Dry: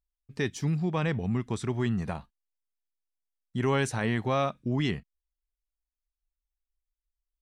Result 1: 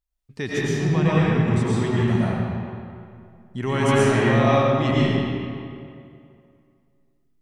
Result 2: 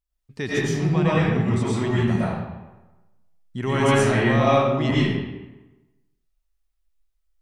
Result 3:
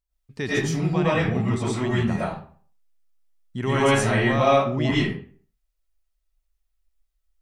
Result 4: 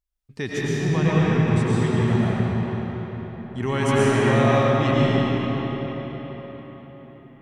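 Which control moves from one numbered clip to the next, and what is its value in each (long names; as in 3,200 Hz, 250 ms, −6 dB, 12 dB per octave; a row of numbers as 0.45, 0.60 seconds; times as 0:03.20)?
comb and all-pass reverb, RT60: 2.4, 1.1, 0.47, 5 seconds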